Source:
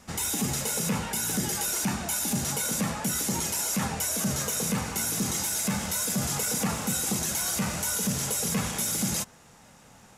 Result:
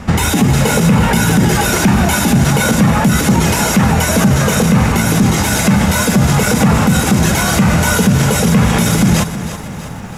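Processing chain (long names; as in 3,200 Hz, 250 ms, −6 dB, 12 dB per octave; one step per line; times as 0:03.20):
bass and treble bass +7 dB, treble −14 dB
boost into a limiter +24.5 dB
feedback echo at a low word length 325 ms, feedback 55%, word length 7 bits, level −12 dB
level −2.5 dB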